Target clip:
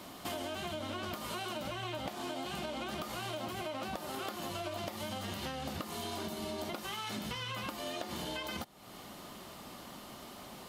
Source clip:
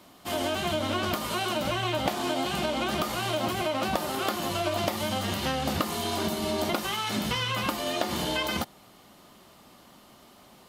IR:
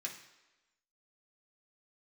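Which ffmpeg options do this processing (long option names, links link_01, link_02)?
-af "acompressor=threshold=-44dB:ratio=5,volume=5dB"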